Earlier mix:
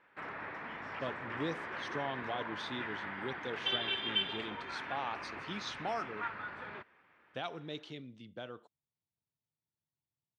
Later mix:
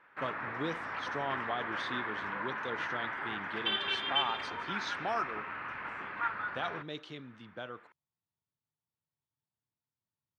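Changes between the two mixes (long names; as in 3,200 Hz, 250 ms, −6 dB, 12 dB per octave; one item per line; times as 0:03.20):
speech: entry −0.80 s
master: add parametric band 1,300 Hz +6.5 dB 1.2 octaves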